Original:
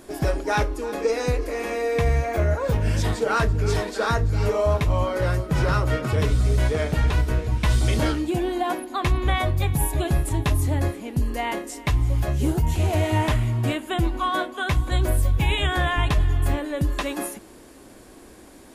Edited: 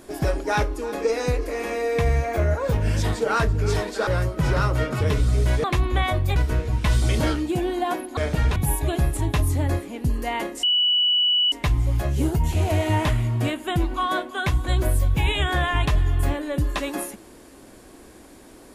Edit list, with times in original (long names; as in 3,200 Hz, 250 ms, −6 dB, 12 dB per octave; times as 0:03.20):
0:04.07–0:05.19: remove
0:06.76–0:07.15: swap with 0:08.96–0:09.68
0:11.75: insert tone 2,950 Hz −16.5 dBFS 0.89 s